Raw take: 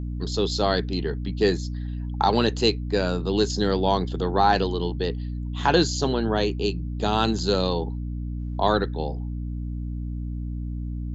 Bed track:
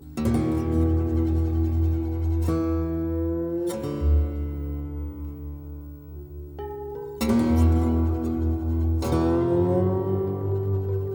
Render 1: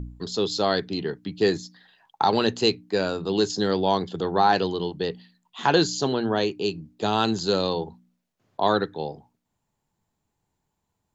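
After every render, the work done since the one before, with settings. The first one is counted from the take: de-hum 60 Hz, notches 5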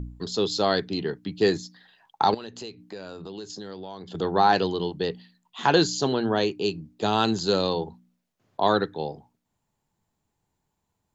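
2.34–4.15 compressor 5:1, threshold -36 dBFS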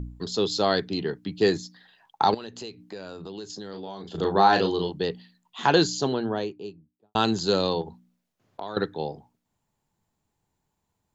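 3.7–4.89 doubler 36 ms -5.5 dB; 5.78–7.15 studio fade out; 7.81–8.77 compressor, threshold -31 dBFS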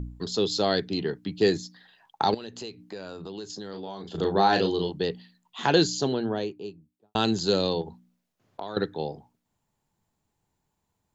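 dynamic EQ 1100 Hz, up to -6 dB, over -37 dBFS, Q 1.4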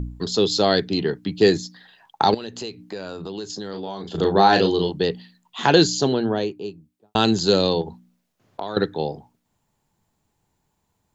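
gain +6 dB; limiter -2 dBFS, peak gain reduction 1 dB

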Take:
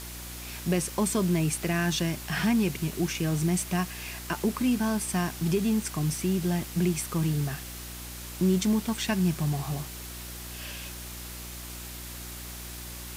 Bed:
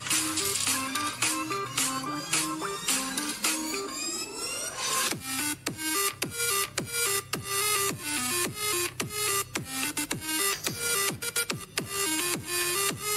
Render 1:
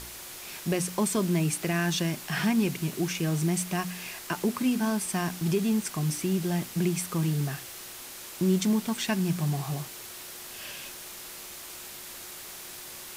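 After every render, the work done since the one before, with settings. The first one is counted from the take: de-hum 60 Hz, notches 5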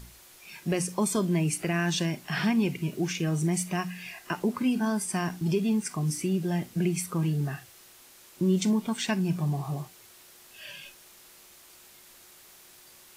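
noise print and reduce 11 dB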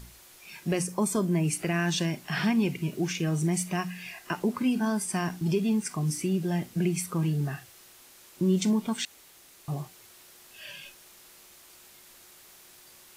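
0.83–1.44 bell 3500 Hz -6 dB 1.3 oct; 9.05–9.68 room tone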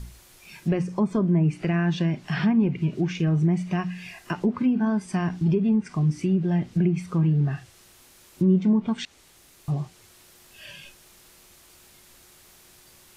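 treble ducked by the level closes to 1500 Hz, closed at -21.5 dBFS; low shelf 190 Hz +11 dB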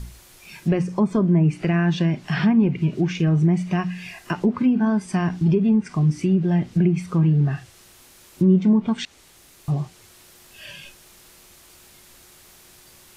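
gain +3.5 dB

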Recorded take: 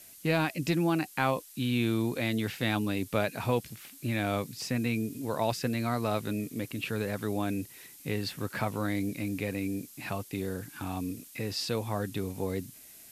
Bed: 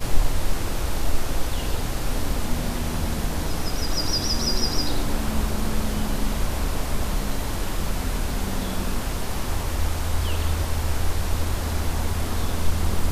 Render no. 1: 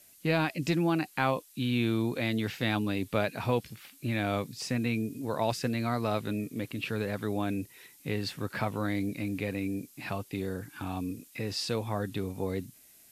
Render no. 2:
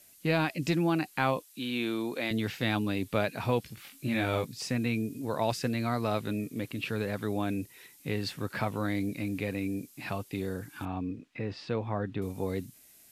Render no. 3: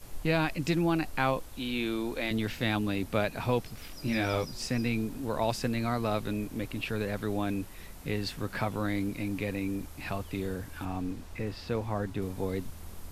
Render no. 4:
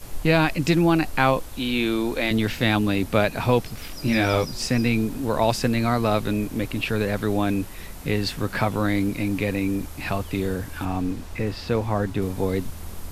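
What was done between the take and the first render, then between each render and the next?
noise print and reduce 6 dB
1.44–2.31 HPF 280 Hz; 3.75–4.45 doubler 22 ms -3.5 dB; 10.85–12.22 LPF 2300 Hz
add bed -22 dB
gain +8.5 dB

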